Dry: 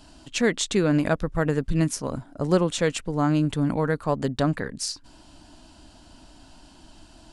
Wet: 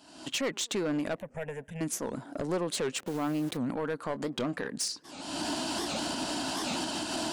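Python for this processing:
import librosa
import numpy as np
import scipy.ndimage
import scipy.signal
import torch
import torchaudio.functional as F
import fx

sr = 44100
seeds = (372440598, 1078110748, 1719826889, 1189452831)

y = fx.delta_hold(x, sr, step_db=-37.5, at=(2.98, 3.57), fade=0.02)
y = fx.recorder_agc(y, sr, target_db=-14.0, rise_db_per_s=50.0, max_gain_db=30)
y = scipy.signal.sosfilt(scipy.signal.butter(2, 230.0, 'highpass', fs=sr, output='sos'), y)
y = 10.0 ** (-20.0 / 20.0) * np.tanh(y / 10.0 ** (-20.0 / 20.0))
y = fx.fixed_phaser(y, sr, hz=1200.0, stages=6, at=(1.2, 1.81))
y = fx.doubler(y, sr, ms=22.0, db=-13, at=(4.07, 4.67))
y = fx.echo_tape(y, sr, ms=111, feedback_pct=78, wet_db=-23.5, lp_hz=1100.0, drive_db=25.0, wow_cents=22)
y = fx.record_warp(y, sr, rpm=78.0, depth_cents=250.0)
y = y * librosa.db_to_amplitude(-5.0)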